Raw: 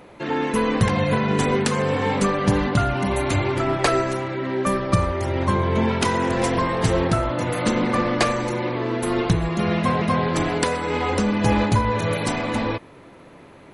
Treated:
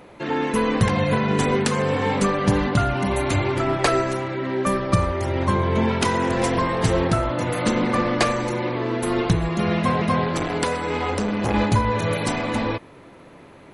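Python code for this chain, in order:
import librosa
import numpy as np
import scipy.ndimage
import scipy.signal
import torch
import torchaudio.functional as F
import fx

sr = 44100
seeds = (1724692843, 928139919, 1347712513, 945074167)

y = fx.transformer_sat(x, sr, knee_hz=610.0, at=(10.24, 11.54))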